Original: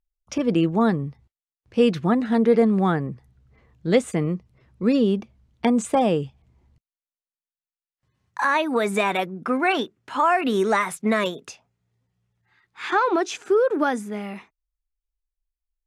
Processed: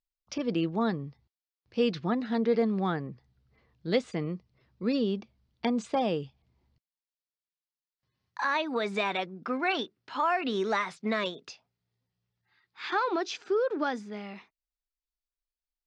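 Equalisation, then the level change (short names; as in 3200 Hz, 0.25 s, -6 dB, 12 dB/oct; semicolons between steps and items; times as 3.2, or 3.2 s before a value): ladder low-pass 5500 Hz, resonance 50%; low shelf 98 Hz -6 dB; +1.5 dB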